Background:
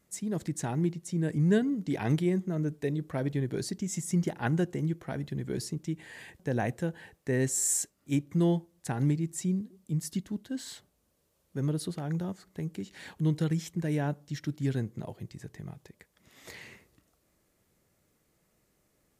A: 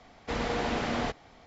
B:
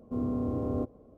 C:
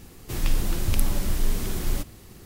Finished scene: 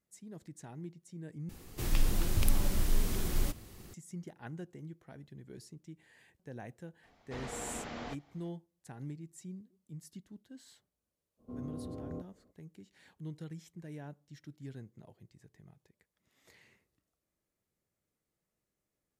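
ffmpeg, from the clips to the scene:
-filter_complex "[0:a]volume=-16dB,asplit=2[a][b];[a]atrim=end=1.494[c];[3:a]atrim=end=2.45,asetpts=PTS-STARTPTS,volume=-5dB[d];[b]atrim=start=3.936[e];[1:a]atrim=end=1.46,asetpts=PTS-STARTPTS,volume=-12dB,afade=t=in:d=0.004:c=hsin,afade=t=out:st=1.456:d=0.004:c=hsin,adelay=7030[f];[2:a]atrim=end=1.17,asetpts=PTS-STARTPTS,volume=-12dB,afade=t=in:d=0.05,afade=t=out:st=1.12:d=0.05,adelay=11370[g];[c][d]acrossfade=d=0.004:c1=hsin:c2=hsin[h];[h][e]acrossfade=d=0.004:c1=hsin:c2=hsin[i];[i][f][g]amix=inputs=3:normalize=0"

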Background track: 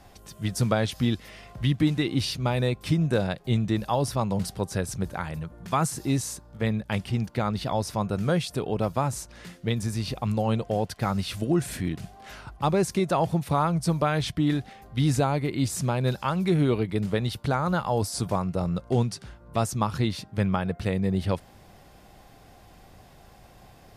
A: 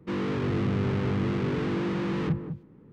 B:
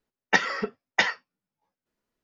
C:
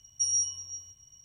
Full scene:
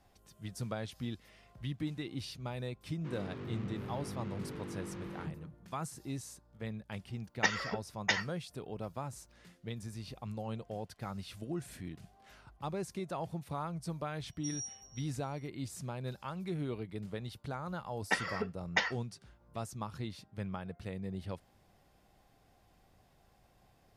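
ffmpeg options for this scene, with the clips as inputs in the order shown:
-filter_complex "[2:a]asplit=2[a][b];[0:a]volume=-15dB[c];[a]aemphasis=mode=production:type=50kf[d];[b]dynaudnorm=f=120:g=5:m=11.5dB[e];[1:a]atrim=end=2.92,asetpts=PTS-STARTPTS,volume=-15.5dB,afade=t=in:d=0.004:c=hsin,afade=t=out:st=2.916:d=0.004:c=hsin,adelay=2970[f];[d]atrim=end=2.23,asetpts=PTS-STARTPTS,volume=-10dB,afade=t=in:d=0.004:c=hsin,afade=t=out:st=2.226:d=0.004:c=hsin,adelay=7100[g];[3:a]atrim=end=1.24,asetpts=PTS-STARTPTS,volume=-15dB,afade=t=in:d=0.004:c=hsin,afade=t=out:st=1.236:d=0.004:c=hsin,adelay=14240[h];[e]atrim=end=2.23,asetpts=PTS-STARTPTS,volume=-13dB,afade=t=in:d=0.004:c=hsin,afade=t=out:st=2.226:d=0.004:c=hsin,adelay=17780[i];[c][f][g][h][i]amix=inputs=5:normalize=0"

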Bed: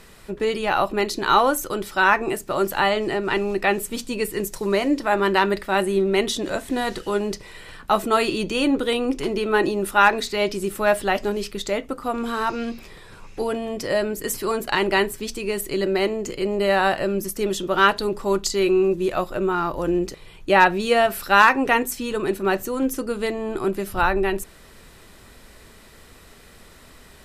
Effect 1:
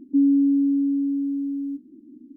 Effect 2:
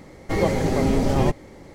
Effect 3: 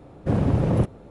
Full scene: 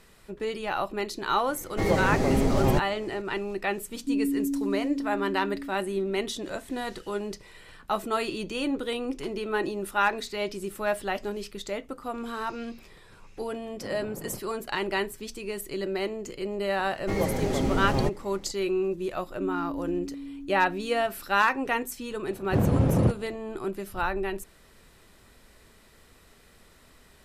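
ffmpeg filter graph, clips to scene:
-filter_complex "[2:a]asplit=2[a][b];[1:a]asplit=2[c][d];[3:a]asplit=2[e][f];[0:a]volume=-8.5dB[g];[c]asuperpass=centerf=230:order=4:qfactor=2.4[h];[e]highpass=190,lowpass=3k[i];[a]atrim=end=1.74,asetpts=PTS-STARTPTS,volume=-3dB,afade=t=in:d=0.004:c=hsin,afade=t=out:st=1.736:d=0.004:c=hsin,adelay=1480[j];[h]atrim=end=2.36,asetpts=PTS-STARTPTS,volume=-6.5dB,afade=t=in:d=0.004:c=hsin,afade=t=out:st=2.356:d=0.004:c=hsin,adelay=173313S[k];[i]atrim=end=1.1,asetpts=PTS-STARTPTS,volume=-16.5dB,afade=t=in:d=0.004:c=hsin,afade=t=out:st=1.096:d=0.004:c=hsin,adelay=13540[l];[b]atrim=end=1.74,asetpts=PTS-STARTPTS,volume=-6dB,afade=t=in:d=0.004:c=hsin,afade=t=out:st=1.736:d=0.004:c=hsin,adelay=16780[m];[d]atrim=end=2.36,asetpts=PTS-STARTPTS,volume=-16dB,afade=t=in:d=0.004:c=hsin,afade=t=out:st=2.356:d=0.004:c=hsin,adelay=19260[n];[f]atrim=end=1.1,asetpts=PTS-STARTPTS,volume=-1.5dB,afade=t=in:d=0.004:c=hsin,afade=t=out:st=1.096:d=0.004:c=hsin,adelay=22260[o];[g][j][k][l][m][n][o]amix=inputs=7:normalize=0"

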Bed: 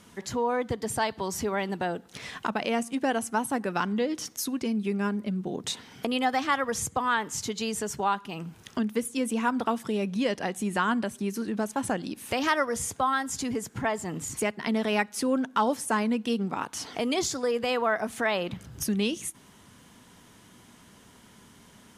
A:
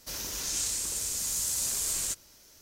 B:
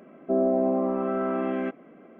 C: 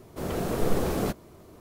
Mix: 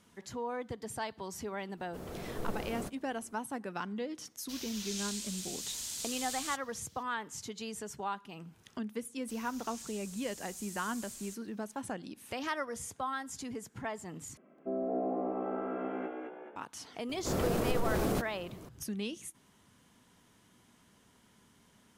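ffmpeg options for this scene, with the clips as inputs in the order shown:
-filter_complex "[3:a]asplit=2[a][b];[1:a]asplit=2[c][d];[0:a]volume=-10.5dB[e];[c]equalizer=f=3.4k:t=o:w=1.3:g=12[f];[2:a]asplit=7[g][h][i][j][k][l][m];[h]adelay=214,afreqshift=57,volume=-3dB[n];[i]adelay=428,afreqshift=114,volume=-9.7dB[o];[j]adelay=642,afreqshift=171,volume=-16.5dB[p];[k]adelay=856,afreqshift=228,volume=-23.2dB[q];[l]adelay=1070,afreqshift=285,volume=-30dB[r];[m]adelay=1284,afreqshift=342,volume=-36.7dB[s];[g][n][o][p][q][r][s]amix=inputs=7:normalize=0[t];[b]acompressor=threshold=-26dB:ratio=6:attack=3.2:release=140:knee=1:detection=peak[u];[e]asplit=2[v][w];[v]atrim=end=14.374[x];[t]atrim=end=2.19,asetpts=PTS-STARTPTS,volume=-12dB[y];[w]atrim=start=16.556[z];[a]atrim=end=1.6,asetpts=PTS-STARTPTS,volume=-13dB,afade=t=in:d=0.004:c=hsin,afade=t=out:st=1.596:d=0.004:c=hsin,adelay=1770[aa];[f]atrim=end=2.61,asetpts=PTS-STARTPTS,volume=-13dB,afade=t=in:d=0.004:c=hsin,afade=t=out:st=2.606:d=0.004:c=hsin,adelay=4420[ab];[d]atrim=end=2.61,asetpts=PTS-STARTPTS,volume=-17.5dB,afade=t=in:d=0.004:c=hsin,afade=t=out:st=2.606:d=0.004:c=hsin,adelay=9210[ac];[u]atrim=end=1.6,asetpts=PTS-STARTPTS,afade=t=in:d=0.004:c=hsin,afade=t=out:st=1.596:d=0.004:c=hsin,adelay=17090[ad];[x][y]acrossfade=d=0.004:c1=hsin:c2=hsin[ae];[ae][z]acrossfade=d=0.004:c1=hsin:c2=hsin[af];[af][aa][ab][ac][ad]amix=inputs=5:normalize=0"

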